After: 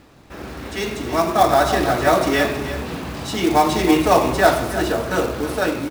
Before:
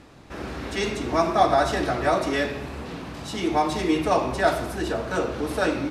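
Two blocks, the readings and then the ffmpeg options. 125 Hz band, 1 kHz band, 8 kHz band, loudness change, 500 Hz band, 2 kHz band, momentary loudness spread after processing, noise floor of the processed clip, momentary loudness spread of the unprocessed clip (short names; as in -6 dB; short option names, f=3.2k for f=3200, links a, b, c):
+5.5 dB, +5.5 dB, +8.0 dB, +5.5 dB, +5.5 dB, +5.5 dB, 13 LU, -47 dBFS, 15 LU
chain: -af "acrusher=bits=4:mode=log:mix=0:aa=0.000001,aecho=1:1:319:0.266,dynaudnorm=f=570:g=5:m=11.5dB"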